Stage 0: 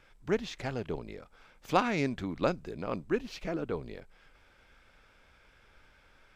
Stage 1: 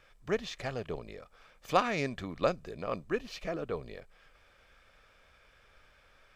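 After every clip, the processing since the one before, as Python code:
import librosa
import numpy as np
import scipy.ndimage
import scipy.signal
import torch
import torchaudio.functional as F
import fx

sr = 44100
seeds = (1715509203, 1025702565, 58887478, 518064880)

y = fx.low_shelf(x, sr, hz=280.0, db=-4.5)
y = y + 0.34 * np.pad(y, (int(1.7 * sr / 1000.0), 0))[:len(y)]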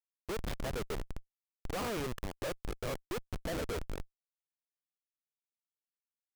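y = fx.graphic_eq(x, sr, hz=(125, 500, 1000, 8000), db=(-11, 5, 4, 3))
y = fx.schmitt(y, sr, flips_db=-34.0)
y = F.gain(torch.from_numpy(y), -2.0).numpy()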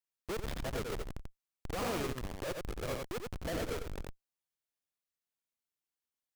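y = x + 10.0 ** (-3.5 / 20.0) * np.pad(x, (int(89 * sr / 1000.0), 0))[:len(x)]
y = fx.transformer_sat(y, sr, knee_hz=61.0)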